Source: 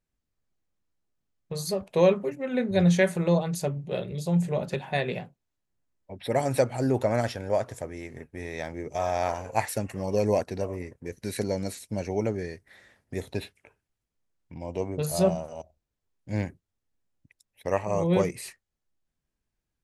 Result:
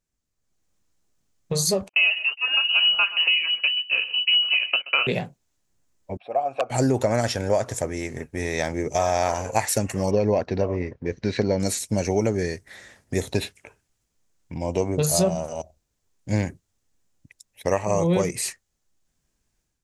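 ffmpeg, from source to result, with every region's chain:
-filter_complex "[0:a]asettb=1/sr,asplit=3[s0][s1][s2];[s0]atrim=end=1.894[s3];[s1]atrim=start=1.89:end=5.07,asetpts=PTS-STARTPTS,afade=t=in:d=0.004:c=qsin,afade=t=out:st=3.176:d=0.004:c=qsin,agate=range=0.0355:threshold=0.0158:ratio=16:release=100:detection=peak,aecho=1:1:128:0.112,atrim=end_sample=140238,lowpass=f=2600:t=q:w=0.5098,lowpass=f=2600:t=q:w=0.6013,lowpass=f=2600:t=q:w=0.9,lowpass=f=2600:t=q:w=2.563,afreqshift=-3100[s4];[s2]atrim=start=5.066[s5];[s3][s4]acrossfade=d=0.004:c1=hsin:c2=qsin[s6];[s6][s5]acrossfade=d=0.004:c1=qsin:c2=hsin,asettb=1/sr,asplit=3[s7][s8][s9];[s7]atrim=end=6.174[s10];[s8]atrim=start=6.17:end=6.7,asetpts=PTS-STARTPTS,afade=t=in:d=0.004:c=qsin,afade=t=out:st=0.526:d=0.004:c=qsin,acrossover=split=3200[s11][s12];[s12]acompressor=threshold=0.002:ratio=4:attack=1:release=60[s13];[s11][s13]amix=inputs=2:normalize=0,aeval=exprs='(mod(3.98*val(0)+1,2)-1)/3.98':c=same,asplit=3[s14][s15][s16];[s14]bandpass=f=730:t=q:w=8,volume=1[s17];[s15]bandpass=f=1090:t=q:w=8,volume=0.501[s18];[s16]bandpass=f=2440:t=q:w=8,volume=0.355[s19];[s17][s18][s19]amix=inputs=3:normalize=0[s20];[s9]atrim=start=6.696[s21];[s10][s20]acrossfade=d=0.004:c1=hsin:c2=qsin[s22];[s22][s21]acrossfade=d=0.004:c1=qsin:c2=hsin,asettb=1/sr,asplit=3[s23][s24][s25];[s23]atrim=end=10.114[s26];[s24]atrim=start=10.11:end=11.6,asetpts=PTS-STARTPTS,afade=t=in:d=0.004:c=qsin,afade=t=out:st=1.486:d=0.004:c=qsin,lowpass=f=4900:w=0.5412,lowpass=f=4900:w=1.3066,aemphasis=mode=reproduction:type=50fm[s27];[s25]atrim=start=11.596[s28];[s26][s27]acrossfade=d=0.004:c1=hsin:c2=qsin[s29];[s29][s28]acrossfade=d=0.004:c1=qsin:c2=hsin,dynaudnorm=f=370:g=3:m=2.82,equalizer=f=6800:w=1.3:g=8.5,acompressor=threshold=0.141:ratio=6"

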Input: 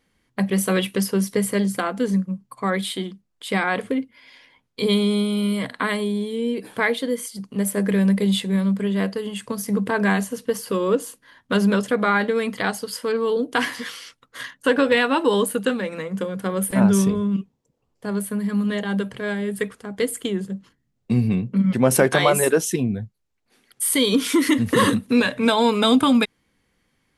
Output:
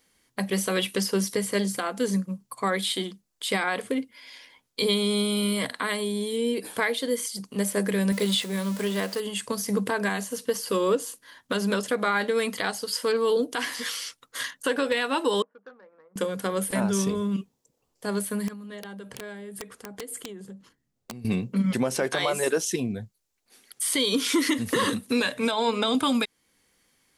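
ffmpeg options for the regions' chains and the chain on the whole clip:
-filter_complex "[0:a]asettb=1/sr,asplit=3[s0][s1][s2];[s0]atrim=end=8.124[s3];[s1]atrim=start=8.12:end=9.2,asetpts=PTS-STARTPTS,afade=t=in:d=0.004:c=qsin,afade=t=out:st=1.076:d=0.004:c=qsin,aeval=exprs='val(0)+0.5*0.0211*sgn(val(0))':c=same,lowshelf=f=150:g=-9.5[s4];[s2]atrim=start=9.196[s5];[s3][s4]acrossfade=d=0.004:c1=hsin:c2=qsin[s6];[s6][s5]acrossfade=d=0.004:c1=qsin:c2=hsin,asettb=1/sr,asplit=3[s7][s8][s9];[s7]atrim=end=15.424[s10];[s8]atrim=start=15.42:end=16.16,asetpts=PTS-STARTPTS,afade=t=in:d=0.004:c=qsin,afade=t=out:st=0.736:d=0.004:c=qsin,lowpass=f=1500:w=0.5412,lowpass=f=1500:w=1.3066,aderivative,adynamicsmooth=sensitivity=3.5:basefreq=1000[s11];[s9]atrim=start=16.156[s12];[s10][s11]acrossfade=d=0.004:c1=hsin:c2=qsin[s13];[s13][s12]acrossfade=d=0.004:c1=qsin:c2=hsin,asettb=1/sr,asplit=3[s14][s15][s16];[s14]atrim=end=18.484[s17];[s15]atrim=start=18.48:end=21.25,asetpts=PTS-STARTPTS,afade=t=in:d=0.004:c=qsin,afade=t=out:st=2.766:d=0.004:c=qsin,highshelf=f=2600:g=-8,acompressor=threshold=0.02:ratio=8:attack=3.2:release=140:knee=1:detection=peak,aeval=exprs='(mod(26.6*val(0)+1,2)-1)/26.6':c=same[s18];[s16]atrim=start=21.246[s19];[s17][s18]acrossfade=d=0.004:c1=hsin:c2=qsin[s20];[s20][s19]acrossfade=d=0.004:c1=qsin:c2=hsin,asettb=1/sr,asplit=3[s21][s22][s23];[s21]atrim=end=25.514[s24];[s22]atrim=start=25.51:end=25.95,asetpts=PTS-STARTPTS,afade=t=in:d=0.004:c=qsin,afade=t=out:st=0.436:d=0.004:c=qsin,lowpass=8600,highshelf=f=5700:g=-10.5,bandreject=f=60:t=h:w=6,bandreject=f=120:t=h:w=6,bandreject=f=180:t=h:w=6,bandreject=f=240:t=h:w=6,bandreject=f=300:t=h:w=6,bandreject=f=360:t=h:w=6,bandreject=f=420:t=h:w=6,bandreject=f=480:t=h:w=6[s25];[s23]atrim=start=25.946[s26];[s24][s25]acrossfade=d=0.004:c1=hsin:c2=qsin[s27];[s27][s26]acrossfade=d=0.004:c1=qsin:c2=hsin,acrossover=split=5800[s28][s29];[s29]acompressor=threshold=0.00708:ratio=4:attack=1:release=60[s30];[s28][s30]amix=inputs=2:normalize=0,bass=f=250:g=-7,treble=f=4000:g=10,alimiter=limit=0.2:level=0:latency=1:release=363"

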